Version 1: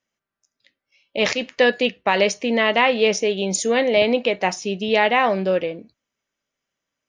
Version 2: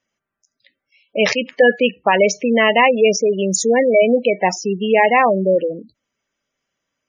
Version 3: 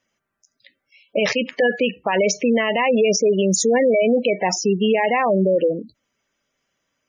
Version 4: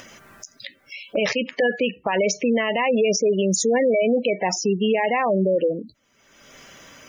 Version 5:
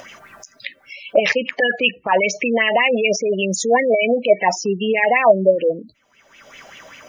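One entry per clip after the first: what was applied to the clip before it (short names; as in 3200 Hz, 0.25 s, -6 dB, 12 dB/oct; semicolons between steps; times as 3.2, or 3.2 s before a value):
spectral gate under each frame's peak -15 dB strong; gain +5 dB
limiter -13.5 dBFS, peak gain reduction 12 dB; gain +3.5 dB
upward compressor, threshold -19 dBFS; gain -2.5 dB
LFO bell 5.1 Hz 620–2800 Hz +16 dB; gain -1.5 dB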